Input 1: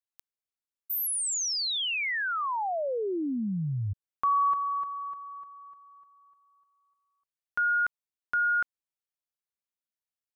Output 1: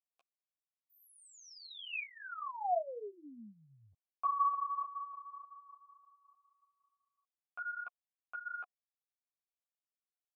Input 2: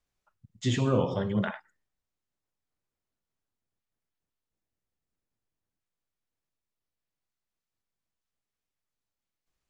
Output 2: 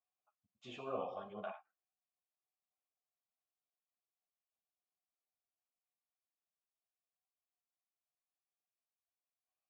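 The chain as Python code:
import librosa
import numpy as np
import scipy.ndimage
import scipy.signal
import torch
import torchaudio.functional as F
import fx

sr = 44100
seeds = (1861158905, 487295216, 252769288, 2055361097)

y = fx.vowel_filter(x, sr, vowel='a')
y = fx.ensemble(y, sr)
y = F.gain(torch.from_numpy(y), 3.0).numpy()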